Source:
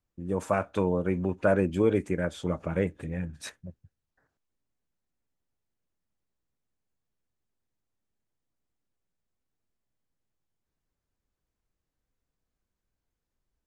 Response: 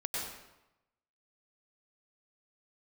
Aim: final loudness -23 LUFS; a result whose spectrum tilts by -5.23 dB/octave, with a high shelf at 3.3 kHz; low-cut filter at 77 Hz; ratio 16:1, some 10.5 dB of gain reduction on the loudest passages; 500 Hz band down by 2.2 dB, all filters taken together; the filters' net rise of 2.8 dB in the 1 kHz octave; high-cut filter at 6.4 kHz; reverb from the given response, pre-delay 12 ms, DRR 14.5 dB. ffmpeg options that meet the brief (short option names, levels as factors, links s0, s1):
-filter_complex "[0:a]highpass=77,lowpass=6400,equalizer=f=500:t=o:g=-4,equalizer=f=1000:t=o:g=6,highshelf=f=3300:g=-7,acompressor=threshold=0.0316:ratio=16,asplit=2[s0][s1];[1:a]atrim=start_sample=2205,adelay=12[s2];[s1][s2]afir=irnorm=-1:irlink=0,volume=0.119[s3];[s0][s3]amix=inputs=2:normalize=0,volume=5.01"